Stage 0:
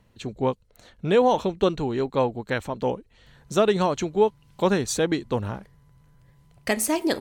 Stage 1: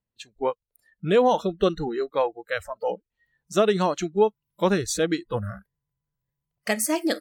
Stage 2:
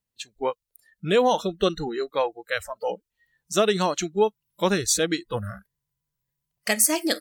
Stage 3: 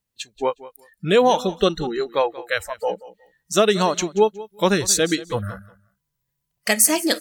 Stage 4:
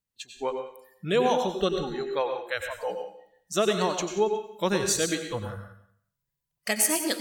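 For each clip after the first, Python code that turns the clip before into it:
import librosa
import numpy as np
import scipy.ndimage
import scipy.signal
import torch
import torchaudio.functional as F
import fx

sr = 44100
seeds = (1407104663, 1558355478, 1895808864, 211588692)

y1 = fx.noise_reduce_blind(x, sr, reduce_db=28)
y2 = fx.high_shelf(y1, sr, hz=2400.0, db=9.5)
y2 = F.gain(torch.from_numpy(y2), -1.5).numpy()
y3 = fx.echo_feedback(y2, sr, ms=182, feedback_pct=19, wet_db=-18.0)
y3 = F.gain(torch.from_numpy(y3), 4.0).numpy()
y4 = fx.rev_plate(y3, sr, seeds[0], rt60_s=0.5, hf_ratio=0.95, predelay_ms=80, drr_db=5.5)
y4 = F.gain(torch.from_numpy(y4), -8.0).numpy()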